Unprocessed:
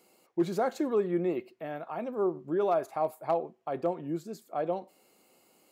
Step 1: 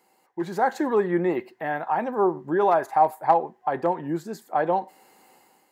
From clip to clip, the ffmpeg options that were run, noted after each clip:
-af "superequalizer=9b=3.16:10b=1.41:11b=3.16,dynaudnorm=f=490:g=3:m=10dB,volume=-3.5dB"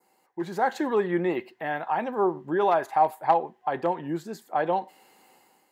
-af "adynamicequalizer=threshold=0.00447:dfrequency=3100:dqfactor=1.5:tfrequency=3100:tqfactor=1.5:attack=5:release=100:ratio=0.375:range=4:mode=boostabove:tftype=bell,volume=-2.5dB"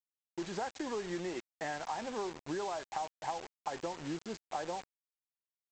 -af "acompressor=threshold=-31dB:ratio=12,aresample=16000,acrusher=bits=6:mix=0:aa=0.000001,aresample=44100,volume=-3.5dB"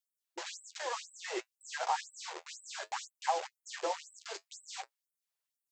-af "flanger=delay=7.7:depth=4.3:regen=-52:speed=0.6:shape=sinusoidal,afftfilt=real='re*gte(b*sr/1024,340*pow(7800/340,0.5+0.5*sin(2*PI*2*pts/sr)))':imag='im*gte(b*sr/1024,340*pow(7800/340,0.5+0.5*sin(2*PI*2*pts/sr)))':win_size=1024:overlap=0.75,volume=10.5dB"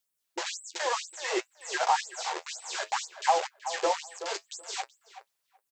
-filter_complex "[0:a]asplit=2[a][b];[b]asoftclip=type=tanh:threshold=-28dB,volume=-8dB[c];[a][c]amix=inputs=2:normalize=0,asplit=2[d][e];[e]adelay=377,lowpass=f=1.7k:p=1,volume=-11dB,asplit=2[f][g];[g]adelay=377,lowpass=f=1.7k:p=1,volume=0.16[h];[d][f][h]amix=inputs=3:normalize=0,volume=5.5dB"

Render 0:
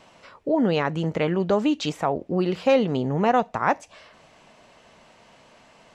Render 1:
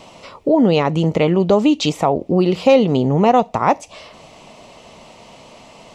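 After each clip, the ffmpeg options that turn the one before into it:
-filter_complex "[0:a]equalizer=f=1.6k:t=o:w=0.44:g=-14,asplit=2[a][b];[b]acompressor=threshold=-30dB:ratio=6,volume=1dB[c];[a][c]amix=inputs=2:normalize=0,volume=5.5dB"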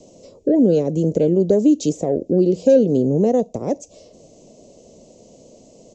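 -filter_complex "[0:a]firequalizer=gain_entry='entry(130,0);entry(290,5);entry(530,5);entry(870,-17);entry(1300,-25);entry(6900,8);entry(10000,-22)':delay=0.05:min_phase=1,acrossover=split=220|790|1800[a][b][c][d];[c]asoftclip=type=tanh:threshold=-27dB[e];[a][b][e][d]amix=inputs=4:normalize=0,volume=-4.5dB"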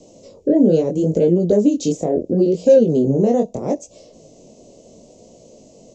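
-af "flanger=delay=17:depth=8:speed=0.74,volume=4dB"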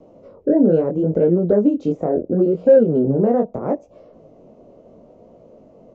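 -af "lowpass=f=1.4k:t=q:w=4.2,volume=-1.5dB"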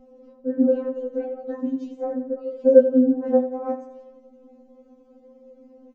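-filter_complex "[0:a]aeval=exprs='val(0)+0.0141*(sin(2*PI*60*n/s)+sin(2*PI*2*60*n/s)/2+sin(2*PI*3*60*n/s)/3+sin(2*PI*4*60*n/s)/4+sin(2*PI*5*60*n/s)/5)':c=same,asplit=2[a][b];[b]aecho=0:1:88|176|264|352|440:0.251|0.131|0.0679|0.0353|0.0184[c];[a][c]amix=inputs=2:normalize=0,afftfilt=real='re*3.46*eq(mod(b,12),0)':imag='im*3.46*eq(mod(b,12),0)':win_size=2048:overlap=0.75,volume=-3.5dB"

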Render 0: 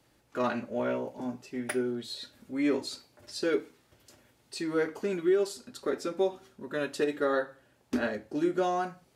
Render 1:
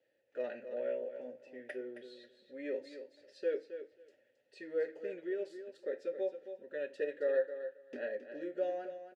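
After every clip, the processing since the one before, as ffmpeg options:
-filter_complex "[0:a]asplit=3[a][b][c];[a]bandpass=f=530:t=q:w=8,volume=0dB[d];[b]bandpass=f=1.84k:t=q:w=8,volume=-6dB[e];[c]bandpass=f=2.48k:t=q:w=8,volume=-9dB[f];[d][e][f]amix=inputs=3:normalize=0,equalizer=f=2.5k:t=o:w=0.4:g=-3.5,aecho=1:1:269|538:0.299|0.0448,volume=1dB"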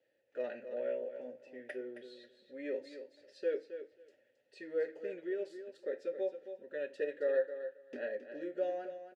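-af anull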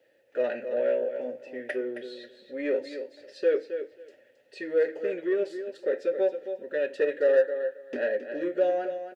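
-filter_complex "[0:a]bass=f=250:g=-3,treble=f=4k:g=-3,asplit=2[a][b];[b]asoftclip=type=tanh:threshold=-37dB,volume=-6dB[c];[a][c]amix=inputs=2:normalize=0,volume=9dB"

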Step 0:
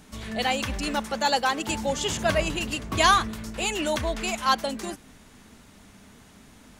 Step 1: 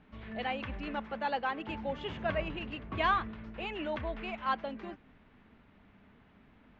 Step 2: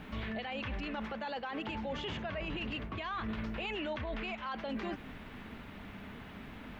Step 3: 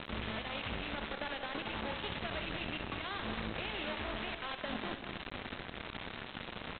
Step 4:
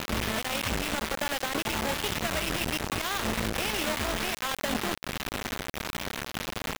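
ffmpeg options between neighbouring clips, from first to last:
-af "lowpass=f=2.8k:w=0.5412,lowpass=f=2.8k:w=1.3066,volume=-9dB"
-af "highshelf=f=3.6k:g=9.5,areverse,acompressor=threshold=-41dB:ratio=10,areverse,alimiter=level_in=19dB:limit=-24dB:level=0:latency=1:release=54,volume=-19dB,volume=13dB"
-af "acompressor=threshold=-42dB:ratio=12,aresample=8000,acrusher=bits=6:mix=0:aa=0.000001,aresample=44100,aecho=1:1:64.14|189.5|274.1:0.282|0.355|0.282,volume=4dB"
-af "acrusher=bits=5:mix=0:aa=0.000001,volume=8.5dB"

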